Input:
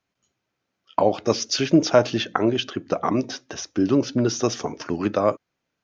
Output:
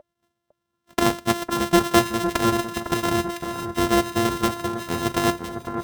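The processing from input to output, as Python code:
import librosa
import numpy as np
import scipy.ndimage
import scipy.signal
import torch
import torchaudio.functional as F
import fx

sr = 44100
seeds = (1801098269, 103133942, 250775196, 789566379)

y = np.r_[np.sort(x[:len(x) // 128 * 128].reshape(-1, 128), axis=1).ravel(), x[len(x) // 128 * 128:]]
y = y + 10.0 ** (-38.0 / 20.0) * np.sin(2.0 * np.pi * 600.0 * np.arange(len(y)) / sr)
y = fx.notch_comb(y, sr, f0_hz=300.0)
y = fx.echo_alternate(y, sr, ms=504, hz=1700.0, feedback_pct=66, wet_db=-7.5)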